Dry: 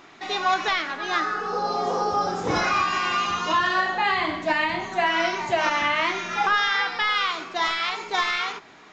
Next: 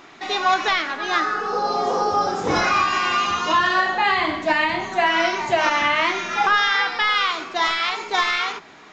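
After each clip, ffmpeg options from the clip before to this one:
ffmpeg -i in.wav -af "bandreject=frequency=60:width_type=h:width=6,bandreject=frequency=120:width_type=h:width=6,bandreject=frequency=180:width_type=h:width=6,volume=3.5dB" out.wav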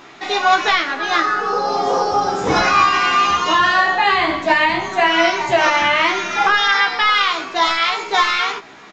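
ffmpeg -i in.wav -filter_complex "[0:a]asplit=2[link_01][link_02];[link_02]adelay=15,volume=-4dB[link_03];[link_01][link_03]amix=inputs=2:normalize=0,volume=3dB" out.wav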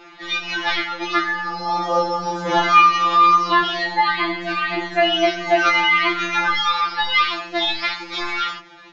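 ffmpeg -i in.wav -af "lowpass=frequency=5800:width=0.5412,lowpass=frequency=5800:width=1.3066,afftfilt=real='re*2.83*eq(mod(b,8),0)':imag='im*2.83*eq(mod(b,8),0)':win_size=2048:overlap=0.75,volume=-1dB" out.wav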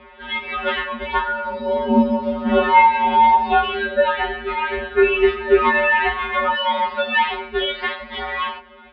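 ffmpeg -i in.wav -af "lowshelf=frequency=360:width_type=q:width=3:gain=-11.5,highpass=frequency=190:width_type=q:width=0.5412,highpass=frequency=190:width_type=q:width=1.307,lowpass=frequency=3600:width_type=q:width=0.5176,lowpass=frequency=3600:width_type=q:width=0.7071,lowpass=frequency=3600:width_type=q:width=1.932,afreqshift=-290,volume=-1dB" out.wav

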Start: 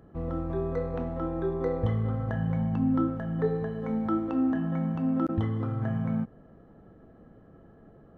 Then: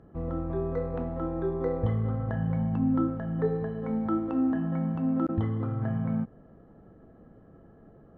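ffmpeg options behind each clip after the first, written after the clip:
ffmpeg -i in.wav -af "aemphasis=mode=reproduction:type=75kf" out.wav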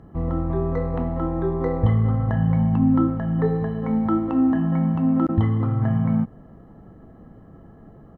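ffmpeg -i in.wav -af "aecho=1:1:1:0.34,volume=7dB" out.wav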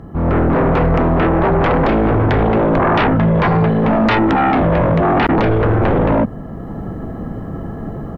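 ffmpeg -i in.wav -af "aeval=exprs='0.447*sin(PI/2*6.31*val(0)/0.447)':channel_layout=same,dynaudnorm=framelen=160:gausssize=3:maxgain=9dB,volume=-8.5dB" out.wav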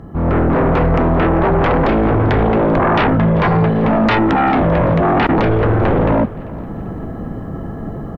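ffmpeg -i in.wav -af "aecho=1:1:392|784|1176|1568:0.1|0.05|0.025|0.0125" out.wav

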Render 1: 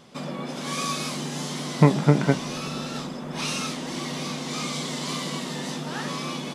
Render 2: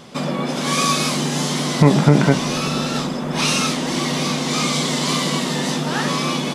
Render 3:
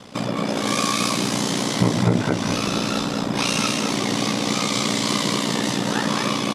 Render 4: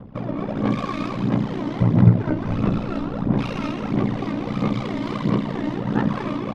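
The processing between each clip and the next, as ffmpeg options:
ffmpeg -i in.wav -af "alimiter=level_in=11dB:limit=-1dB:release=50:level=0:latency=1,volume=-1dB" out.wav
ffmpeg -i in.wav -filter_complex "[0:a]acompressor=threshold=-20dB:ratio=2,aeval=exprs='val(0)*sin(2*PI*30*n/s)':channel_layout=same,asplit=2[link_01][link_02];[link_02]aecho=0:1:214:0.631[link_03];[link_01][link_03]amix=inputs=2:normalize=0,volume=2dB" out.wav
ffmpeg -i in.wav -af "adynamicsmooth=sensitivity=1:basefreq=1300,aphaser=in_gain=1:out_gain=1:delay=3.3:decay=0.52:speed=1.5:type=sinusoidal,aemphasis=mode=reproduction:type=bsi,volume=-6dB" out.wav

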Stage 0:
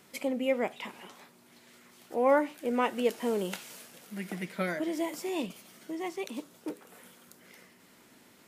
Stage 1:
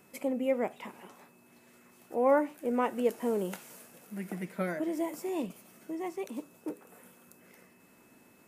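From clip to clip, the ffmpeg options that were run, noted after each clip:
ffmpeg -i in.wav -af "aeval=exprs='val(0)+0.000891*sin(2*PI*2600*n/s)':channel_layout=same,equalizer=frequency=3700:width_type=o:width=1.8:gain=-10.5" out.wav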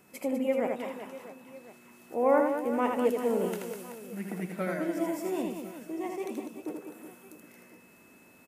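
ffmpeg -i in.wav -af "aecho=1:1:80|200|380|650|1055:0.631|0.398|0.251|0.158|0.1" out.wav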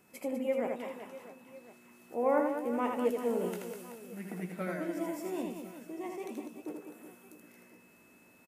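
ffmpeg -i in.wav -filter_complex "[0:a]asplit=2[link_01][link_02];[link_02]adelay=17,volume=-11.5dB[link_03];[link_01][link_03]amix=inputs=2:normalize=0,volume=-4.5dB" out.wav

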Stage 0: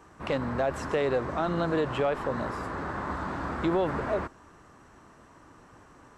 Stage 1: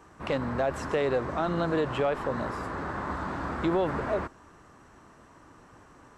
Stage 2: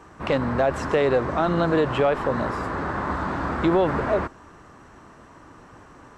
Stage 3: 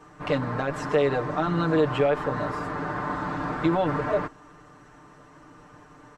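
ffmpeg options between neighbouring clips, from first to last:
ffmpeg -i in.wav -af anull out.wav
ffmpeg -i in.wav -af "highshelf=frequency=8600:gain=-8,volume=6.5dB" out.wav
ffmpeg -i in.wav -af "aecho=1:1:6.7:0.94,volume=-5.5dB" out.wav

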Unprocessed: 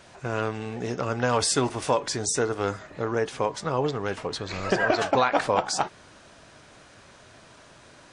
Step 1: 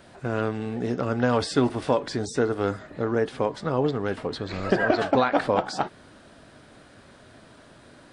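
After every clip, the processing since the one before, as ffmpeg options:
ffmpeg -i in.wav -filter_complex "[0:a]equalizer=frequency=250:width_type=o:width=0.67:gain=5,equalizer=frequency=1000:width_type=o:width=0.67:gain=-4,equalizer=frequency=2500:width_type=o:width=0.67:gain=-5,equalizer=frequency=6300:width_type=o:width=0.67:gain=-10,acrossover=split=6500[link_01][link_02];[link_02]acompressor=threshold=-58dB:ratio=4:attack=1:release=60[link_03];[link_01][link_03]amix=inputs=2:normalize=0,volume=1.5dB" out.wav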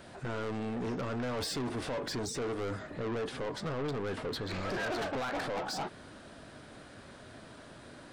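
ffmpeg -i in.wav -af "alimiter=limit=-17dB:level=0:latency=1:release=15,asoftclip=type=tanh:threshold=-32dB" out.wav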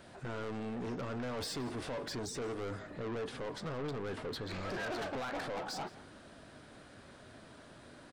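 ffmpeg -i in.wav -filter_complex "[0:a]asplit=2[link_01][link_02];[link_02]adelay=169.1,volume=-18dB,highshelf=frequency=4000:gain=-3.8[link_03];[link_01][link_03]amix=inputs=2:normalize=0,volume=-4dB" out.wav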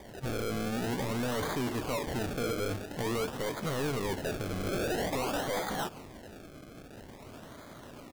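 ffmpeg -i in.wav -af "acrusher=samples=32:mix=1:aa=0.000001:lfo=1:lforange=32:lforate=0.49,volume=6.5dB" out.wav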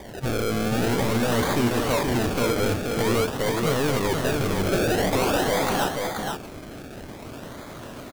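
ffmpeg -i in.wav -af "aecho=1:1:479:0.631,volume=8.5dB" out.wav

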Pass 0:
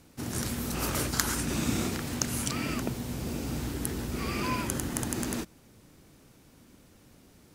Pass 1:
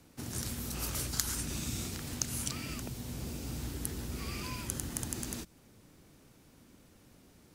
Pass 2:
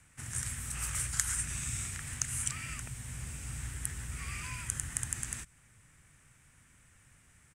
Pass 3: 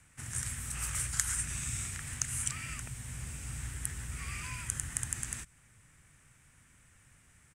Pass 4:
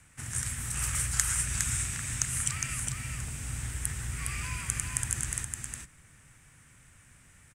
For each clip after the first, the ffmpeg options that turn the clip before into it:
ffmpeg -i in.wav -filter_complex "[0:a]acrossover=split=130|3000[link_01][link_02][link_03];[link_02]acompressor=threshold=-39dB:ratio=6[link_04];[link_01][link_04][link_03]amix=inputs=3:normalize=0,volume=-3dB" out.wav
ffmpeg -i in.wav -af "firequalizer=gain_entry='entry(130,0);entry(200,-11);entry(320,-16);entry(1200,0);entry(1800,7);entry(4300,-10);entry(8300,9);entry(13000,-11)':delay=0.05:min_phase=1" out.wav
ffmpeg -i in.wav -af anull out.wav
ffmpeg -i in.wav -af "aecho=1:1:410:0.596,volume=3.5dB" out.wav

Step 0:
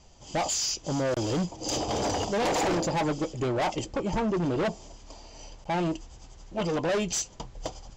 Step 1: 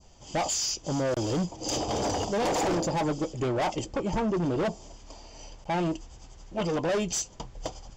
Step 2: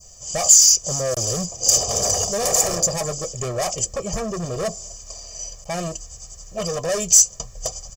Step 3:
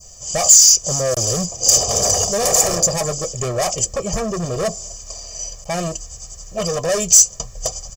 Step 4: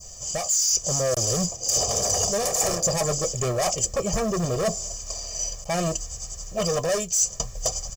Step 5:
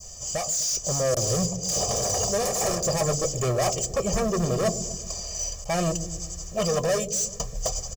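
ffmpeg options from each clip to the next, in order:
ffmpeg -i in.wav -af "bandreject=frequency=4000:width=20,adynamicequalizer=threshold=0.00708:dfrequency=2200:dqfactor=0.94:tfrequency=2200:tqfactor=0.94:attack=5:release=100:ratio=0.375:range=2:mode=cutabove:tftype=bell" out.wav
ffmpeg -i in.wav -af "aecho=1:1:1.7:0.85,aexciter=amount=7.1:drive=7:freq=5300" out.wav
ffmpeg -i in.wav -af "asoftclip=type=tanh:threshold=-4dB,volume=4dB" out.wav
ffmpeg -i in.wav -af "areverse,acompressor=threshold=-20dB:ratio=10,areverse,acrusher=bits=7:mode=log:mix=0:aa=0.000001" out.wav
ffmpeg -i in.wav -filter_complex "[0:a]acrossover=split=530|2500[link_01][link_02][link_03];[link_01]aecho=1:1:127|254|381|508|635|762|889:0.447|0.25|0.14|0.0784|0.0439|0.0246|0.0138[link_04];[link_03]asoftclip=type=tanh:threshold=-23dB[link_05];[link_04][link_02][link_05]amix=inputs=3:normalize=0" out.wav

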